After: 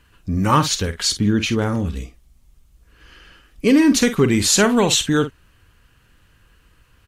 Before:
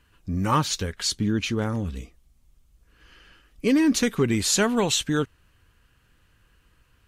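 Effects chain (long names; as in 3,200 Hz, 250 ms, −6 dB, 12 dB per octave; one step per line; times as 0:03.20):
double-tracking delay 49 ms −11 dB
level +6 dB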